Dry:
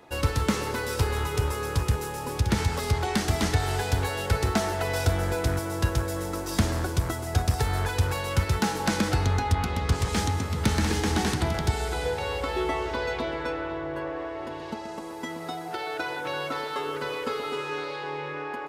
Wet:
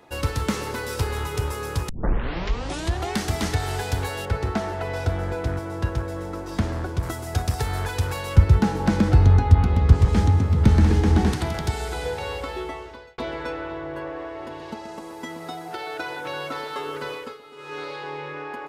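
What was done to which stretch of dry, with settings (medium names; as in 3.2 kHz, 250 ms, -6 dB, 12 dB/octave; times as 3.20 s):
1.89 s: tape start 1.24 s
4.25–7.03 s: low-pass 2 kHz 6 dB/octave
8.36–11.33 s: tilt EQ -3 dB/octave
12.30–13.18 s: fade out
17.10–17.83 s: dip -14.5 dB, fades 0.28 s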